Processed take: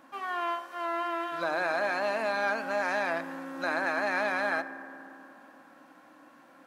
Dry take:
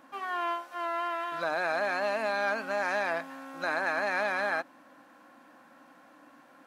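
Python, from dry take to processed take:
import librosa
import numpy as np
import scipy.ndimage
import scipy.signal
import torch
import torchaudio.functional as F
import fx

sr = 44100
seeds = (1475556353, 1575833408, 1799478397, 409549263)

y = fx.rev_fdn(x, sr, rt60_s=3.2, lf_ratio=1.2, hf_ratio=0.25, size_ms=18.0, drr_db=11.0)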